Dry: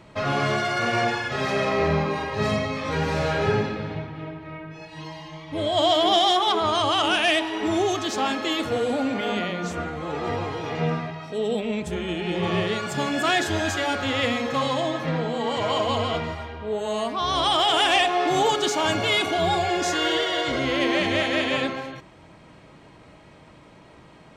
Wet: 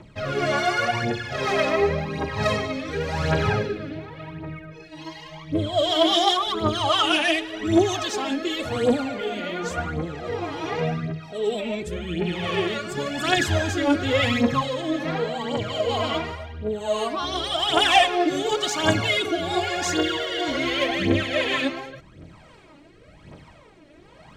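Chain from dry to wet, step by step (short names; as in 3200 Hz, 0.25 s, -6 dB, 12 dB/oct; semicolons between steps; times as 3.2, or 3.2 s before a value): 13.37–14.62 low shelf 330 Hz +7.5 dB; phaser 0.9 Hz, delay 3.6 ms, feedback 66%; rotary speaker horn 1.1 Hz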